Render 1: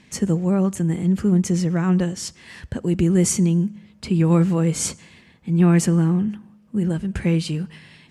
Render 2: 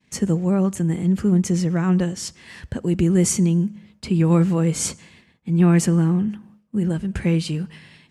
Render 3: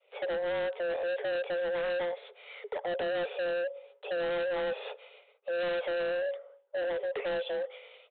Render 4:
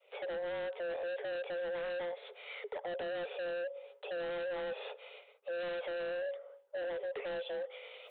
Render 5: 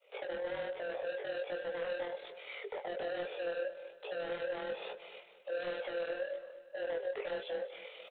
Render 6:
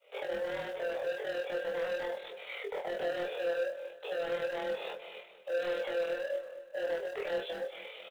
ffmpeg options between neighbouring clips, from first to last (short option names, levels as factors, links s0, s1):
-af "agate=range=0.0224:threshold=0.00562:ratio=3:detection=peak"
-af "afreqshift=350,aresample=8000,asoftclip=type=hard:threshold=0.0596,aresample=44100,volume=0.531"
-af "areverse,acompressor=mode=upward:threshold=0.00355:ratio=2.5,areverse,alimiter=level_in=4.22:limit=0.0631:level=0:latency=1:release=201,volume=0.237,volume=1.19"
-af "tremolo=f=40:d=0.571,flanger=delay=16:depth=4.4:speed=1.2,aecho=1:1:228|456|684|912:0.178|0.0765|0.0329|0.0141,volume=1.88"
-filter_complex "[0:a]asplit=2[s0][s1];[s1]acrusher=bits=3:mode=log:mix=0:aa=0.000001,volume=0.282[s2];[s0][s2]amix=inputs=2:normalize=0,volume=39.8,asoftclip=hard,volume=0.0251,asplit=2[s3][s4];[s4]adelay=25,volume=0.668[s5];[s3][s5]amix=inputs=2:normalize=0"